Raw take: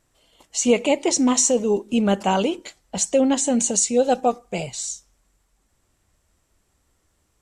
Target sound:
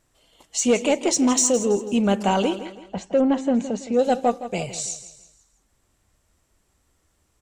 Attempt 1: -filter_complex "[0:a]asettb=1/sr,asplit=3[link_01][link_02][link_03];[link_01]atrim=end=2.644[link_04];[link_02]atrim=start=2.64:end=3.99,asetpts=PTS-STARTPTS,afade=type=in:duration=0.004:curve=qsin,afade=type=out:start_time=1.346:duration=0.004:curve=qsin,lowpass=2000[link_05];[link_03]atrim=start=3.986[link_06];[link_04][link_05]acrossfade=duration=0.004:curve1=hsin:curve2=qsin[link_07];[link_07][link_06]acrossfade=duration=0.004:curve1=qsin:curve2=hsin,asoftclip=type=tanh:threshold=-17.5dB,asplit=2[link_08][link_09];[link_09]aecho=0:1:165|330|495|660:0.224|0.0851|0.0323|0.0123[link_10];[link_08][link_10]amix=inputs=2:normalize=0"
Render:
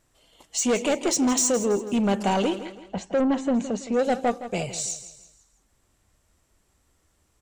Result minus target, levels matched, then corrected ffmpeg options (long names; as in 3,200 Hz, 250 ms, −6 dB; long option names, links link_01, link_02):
soft clipping: distortion +11 dB
-filter_complex "[0:a]asettb=1/sr,asplit=3[link_01][link_02][link_03];[link_01]atrim=end=2.644[link_04];[link_02]atrim=start=2.64:end=3.99,asetpts=PTS-STARTPTS,afade=type=in:duration=0.004:curve=qsin,afade=type=out:start_time=1.346:duration=0.004:curve=qsin,lowpass=2000[link_05];[link_03]atrim=start=3.986[link_06];[link_04][link_05]acrossfade=duration=0.004:curve1=hsin:curve2=qsin[link_07];[link_07][link_06]acrossfade=duration=0.004:curve1=qsin:curve2=hsin,asoftclip=type=tanh:threshold=-9dB,asplit=2[link_08][link_09];[link_09]aecho=0:1:165|330|495|660:0.224|0.0851|0.0323|0.0123[link_10];[link_08][link_10]amix=inputs=2:normalize=0"